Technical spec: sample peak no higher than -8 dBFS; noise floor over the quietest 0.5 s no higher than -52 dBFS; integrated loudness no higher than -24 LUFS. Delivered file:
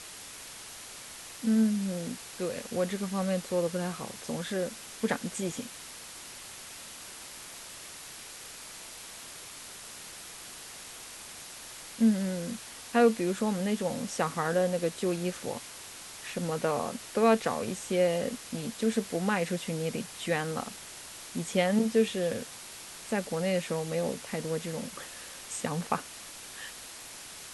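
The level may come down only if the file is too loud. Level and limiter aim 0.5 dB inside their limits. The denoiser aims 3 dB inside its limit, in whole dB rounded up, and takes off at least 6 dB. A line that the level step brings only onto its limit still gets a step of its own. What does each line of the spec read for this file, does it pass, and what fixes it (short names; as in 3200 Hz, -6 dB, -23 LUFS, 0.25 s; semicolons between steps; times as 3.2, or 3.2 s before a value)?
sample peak -12.5 dBFS: OK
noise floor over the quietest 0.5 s -45 dBFS: fail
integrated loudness -32.0 LUFS: OK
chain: denoiser 10 dB, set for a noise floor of -45 dBFS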